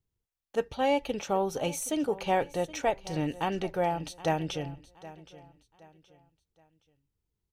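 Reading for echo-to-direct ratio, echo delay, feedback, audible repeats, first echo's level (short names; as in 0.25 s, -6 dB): -17.5 dB, 0.771 s, 34%, 2, -18.0 dB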